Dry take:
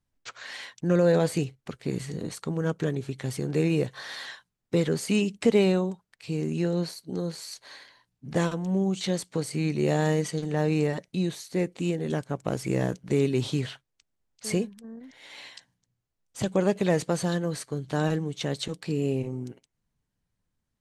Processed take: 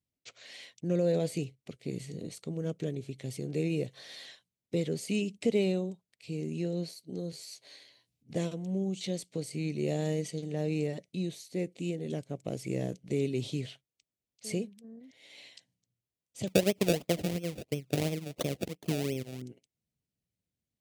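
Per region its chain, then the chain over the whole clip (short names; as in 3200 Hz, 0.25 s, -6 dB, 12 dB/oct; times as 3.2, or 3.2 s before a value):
7.32–8.3 auto swell 0.383 s + doubler 14 ms -6.5 dB + three-band squash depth 40%
16.47–19.42 high shelf 4900 Hz +9 dB + transient shaper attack +8 dB, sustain -12 dB + decimation with a swept rate 29× 2.9 Hz
whole clip: HPF 76 Hz; band shelf 1200 Hz -12 dB 1.3 oct; gain -6.5 dB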